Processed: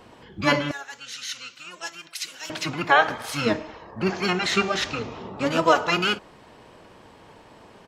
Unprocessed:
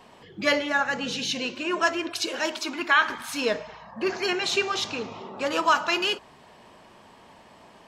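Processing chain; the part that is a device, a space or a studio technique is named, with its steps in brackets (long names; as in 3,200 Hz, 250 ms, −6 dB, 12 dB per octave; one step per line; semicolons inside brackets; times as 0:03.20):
octave pedal (pitch-shifted copies added −12 semitones −1 dB)
0:00.71–0:02.50: first-order pre-emphasis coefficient 0.97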